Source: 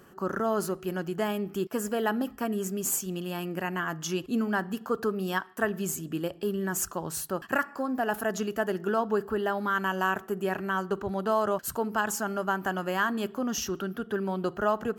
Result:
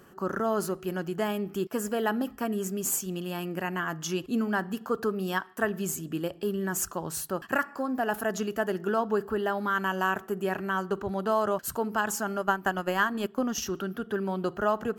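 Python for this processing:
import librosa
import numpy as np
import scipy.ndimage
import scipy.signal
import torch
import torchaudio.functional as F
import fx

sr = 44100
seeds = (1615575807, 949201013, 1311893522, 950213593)

y = fx.transient(x, sr, attack_db=5, sustain_db=-7, at=(12.4, 13.64), fade=0.02)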